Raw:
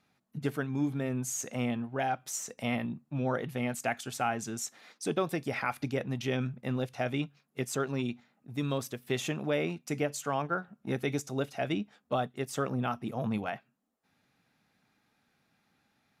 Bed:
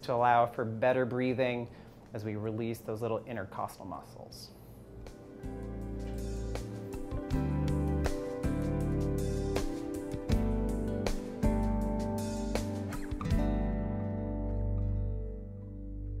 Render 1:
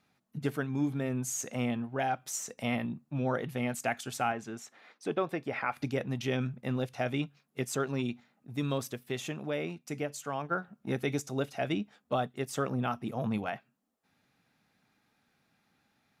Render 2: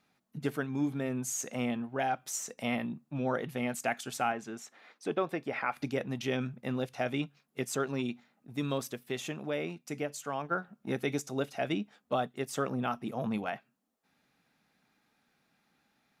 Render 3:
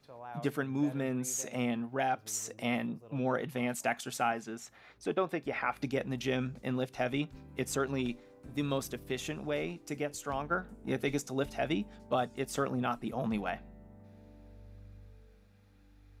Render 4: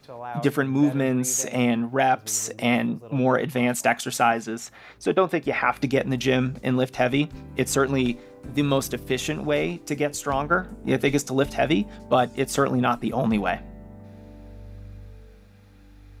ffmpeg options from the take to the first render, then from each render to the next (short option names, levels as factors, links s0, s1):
-filter_complex "[0:a]asettb=1/sr,asplit=3[s0][s1][s2];[s0]atrim=end=4.324[s3];[s1]atrim=start=4.32:end=5.77,asetpts=PTS-STARTPTS,afade=t=in:d=0.004:c=qsin,afade=t=out:st=1.446:d=0.004:c=qsin,bass=f=250:g=-6,treble=f=4000:g=-14[s4];[s2]atrim=start=5.766[s5];[s3][s4]acrossfade=d=0.004:c1=hsin:c2=qsin[s6];[s6][s5]acrossfade=d=0.004:c1=qsin:c2=hsin,asplit=3[s7][s8][s9];[s7]atrim=end=9.032[s10];[s8]atrim=start=9.028:end=10.512,asetpts=PTS-STARTPTS,volume=0.631[s11];[s9]atrim=start=10.508[s12];[s10][s11]acrossfade=d=0.004:c1=hsin:c2=hsin[s13];[s13][s12]acrossfade=d=0.004:c1=hsin:c2=hsin"
-af "equalizer=f=100:t=o:w=0.75:g=-8.5"
-filter_complex "[1:a]volume=0.1[s0];[0:a][s0]amix=inputs=2:normalize=0"
-af "volume=3.55"